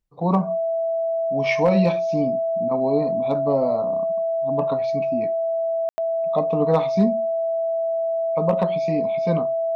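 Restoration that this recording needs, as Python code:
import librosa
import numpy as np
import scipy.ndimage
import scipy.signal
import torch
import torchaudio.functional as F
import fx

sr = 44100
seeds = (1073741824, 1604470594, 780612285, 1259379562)

y = fx.fix_declip(x, sr, threshold_db=-9.0)
y = fx.notch(y, sr, hz=660.0, q=30.0)
y = fx.fix_ambience(y, sr, seeds[0], print_start_s=0.0, print_end_s=0.5, start_s=5.89, end_s=5.98)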